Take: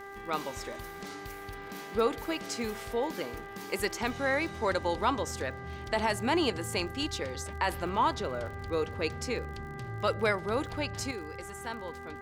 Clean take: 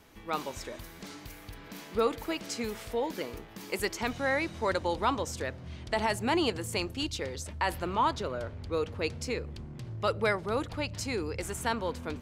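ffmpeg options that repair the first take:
-af "adeclick=t=4,bandreject=f=396.7:t=h:w=4,bandreject=f=793.4:t=h:w=4,bandreject=f=1.1901k:t=h:w=4,bandreject=f=1.5868k:t=h:w=4,bandreject=f=1.9835k:t=h:w=4,asetnsamples=n=441:p=0,asendcmd='11.11 volume volume 8.5dB',volume=0dB"

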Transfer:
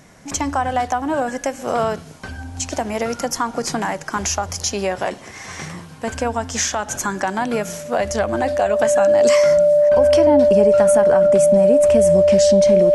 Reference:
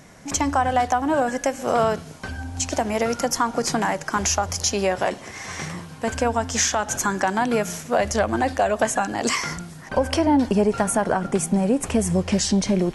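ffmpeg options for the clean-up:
-af "bandreject=f=590:w=30"

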